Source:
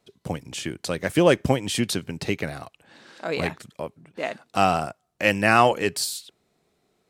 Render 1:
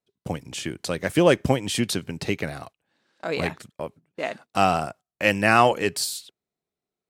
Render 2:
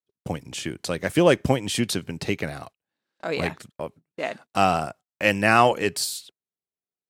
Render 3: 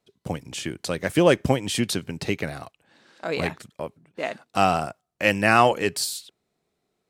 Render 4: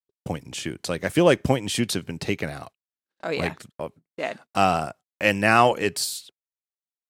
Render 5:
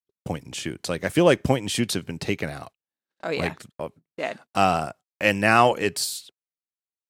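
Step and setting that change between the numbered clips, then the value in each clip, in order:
gate, range: -20, -34, -7, -59, -47 dB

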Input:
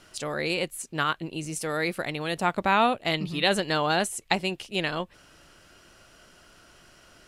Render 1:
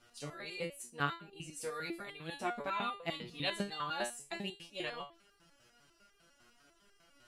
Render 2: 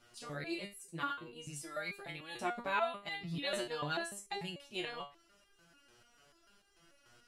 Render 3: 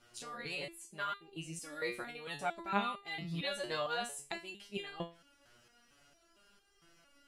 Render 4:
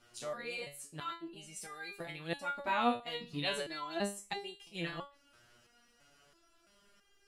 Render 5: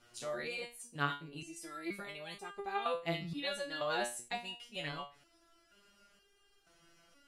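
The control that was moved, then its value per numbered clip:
stepped resonator, rate: 10, 6.8, 4.4, 3, 2.1 Hz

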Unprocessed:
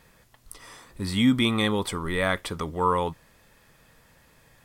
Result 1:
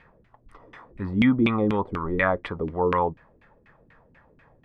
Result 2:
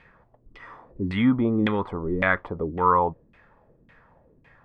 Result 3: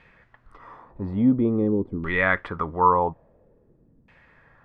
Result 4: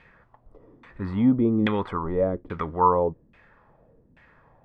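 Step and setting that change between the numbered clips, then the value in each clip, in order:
LFO low-pass, rate: 4.1, 1.8, 0.49, 1.2 Hz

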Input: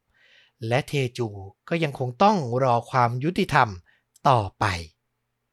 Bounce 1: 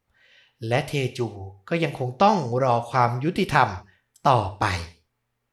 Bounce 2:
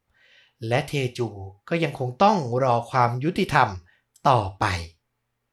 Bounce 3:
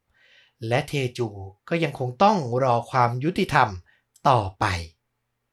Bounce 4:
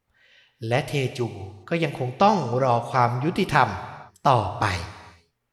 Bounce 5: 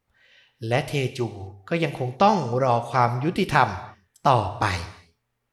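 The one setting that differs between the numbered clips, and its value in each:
non-linear reverb, gate: 200, 130, 90, 480, 320 ms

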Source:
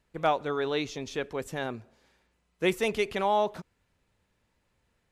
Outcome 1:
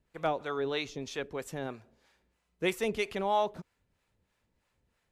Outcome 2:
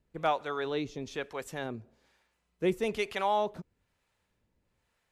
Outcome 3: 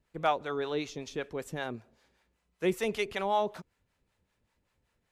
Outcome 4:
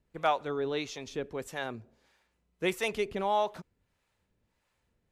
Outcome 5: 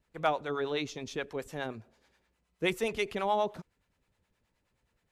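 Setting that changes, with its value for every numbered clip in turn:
harmonic tremolo, rate: 3.1, 1.1, 5.2, 1.6, 9.5 Hz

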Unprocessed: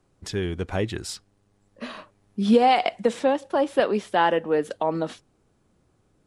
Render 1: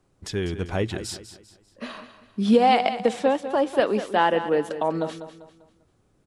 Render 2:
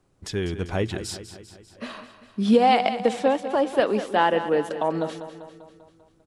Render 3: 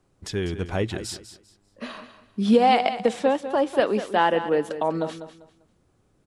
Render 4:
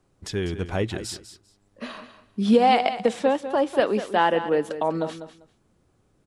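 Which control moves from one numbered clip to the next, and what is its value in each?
feedback echo, feedback: 37, 57, 25, 17%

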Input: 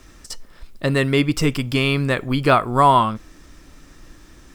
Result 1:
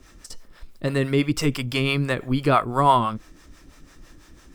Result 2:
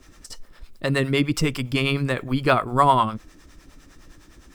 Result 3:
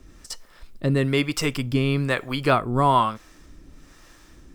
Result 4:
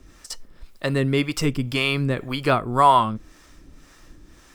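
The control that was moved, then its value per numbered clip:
harmonic tremolo, rate: 6, 9.8, 1.1, 1.9 Hz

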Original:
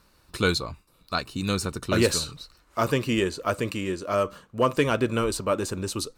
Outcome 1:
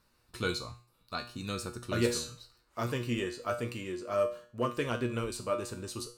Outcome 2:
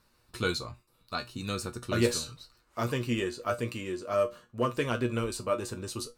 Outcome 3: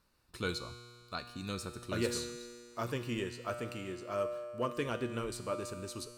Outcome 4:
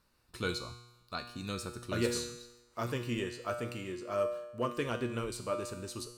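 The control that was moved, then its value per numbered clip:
resonator, decay: 0.41, 0.18, 2, 0.94 s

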